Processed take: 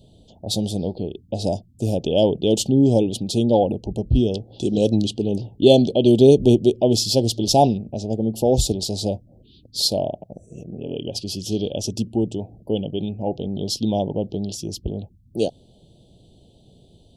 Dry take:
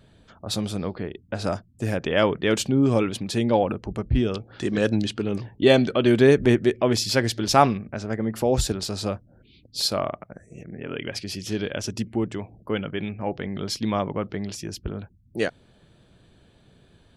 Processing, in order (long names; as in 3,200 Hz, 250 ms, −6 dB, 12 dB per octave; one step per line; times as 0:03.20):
inverse Chebyshev band-stop filter 1,100–2,200 Hz, stop band 40 dB
level +4 dB